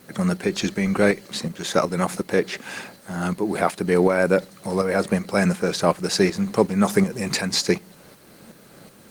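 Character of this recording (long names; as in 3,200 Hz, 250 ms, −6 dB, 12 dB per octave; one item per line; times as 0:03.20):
tremolo saw up 2.7 Hz, depth 55%
a quantiser's noise floor 10 bits, dither triangular
Opus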